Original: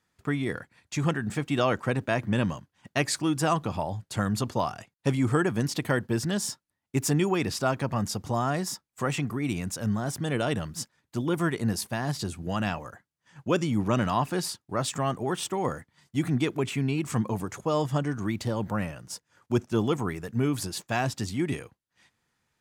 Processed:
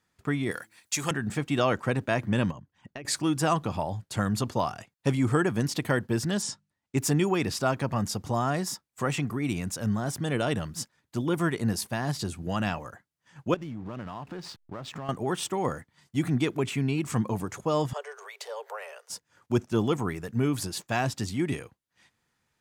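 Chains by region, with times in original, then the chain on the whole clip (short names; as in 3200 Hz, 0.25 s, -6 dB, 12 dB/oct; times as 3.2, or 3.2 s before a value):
0.51–1.11 RIAA curve recording + de-hum 109.3 Hz, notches 3
2.51–3.05 formant sharpening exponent 1.5 + compressor 10:1, threshold -36 dBFS
6.42–6.98 LPF 8700 Hz 24 dB/oct + notches 50/100/150/200 Hz
13.54–15.09 LPF 3900 Hz + compressor, threshold -34 dBFS + backlash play -46.5 dBFS
17.93–19.1 compressor 1.5:1, threshold -33 dBFS + Chebyshev high-pass 400 Hz, order 10
whole clip: dry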